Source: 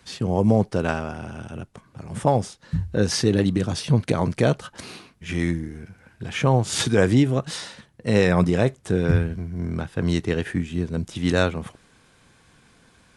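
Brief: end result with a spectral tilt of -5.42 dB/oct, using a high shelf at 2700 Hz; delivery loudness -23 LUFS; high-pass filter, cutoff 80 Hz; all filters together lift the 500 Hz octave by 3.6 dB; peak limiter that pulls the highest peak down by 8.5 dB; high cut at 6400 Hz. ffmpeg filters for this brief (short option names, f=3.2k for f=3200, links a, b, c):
-af "highpass=80,lowpass=6.4k,equalizer=f=500:t=o:g=4,highshelf=f=2.7k:g=5.5,volume=1dB,alimiter=limit=-10dB:level=0:latency=1"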